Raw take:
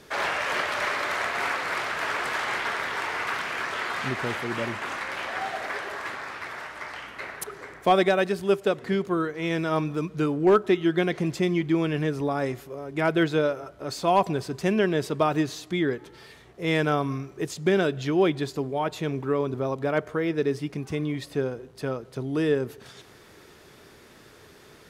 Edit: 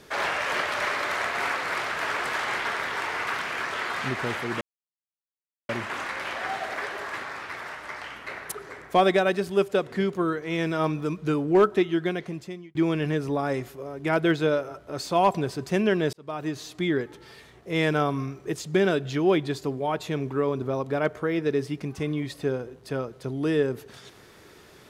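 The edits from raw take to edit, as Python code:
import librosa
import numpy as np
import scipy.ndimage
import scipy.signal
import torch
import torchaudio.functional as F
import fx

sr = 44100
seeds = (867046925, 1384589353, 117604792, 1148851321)

y = fx.edit(x, sr, fx.insert_silence(at_s=4.61, length_s=1.08),
    fx.fade_out_span(start_s=10.66, length_s=1.01),
    fx.fade_in_span(start_s=15.05, length_s=0.67), tone=tone)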